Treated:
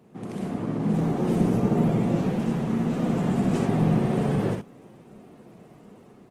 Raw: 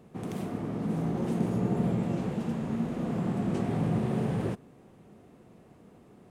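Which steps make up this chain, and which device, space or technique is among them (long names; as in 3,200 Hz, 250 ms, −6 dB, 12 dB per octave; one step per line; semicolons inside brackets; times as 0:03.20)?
ambience of single reflections 43 ms −16.5 dB, 63 ms −5 dB
0:02.89–0:03.67: high-shelf EQ 2,600 Hz +3.5 dB
video call (high-pass filter 110 Hz 24 dB per octave; automatic gain control gain up to 5 dB; Opus 16 kbit/s 48,000 Hz)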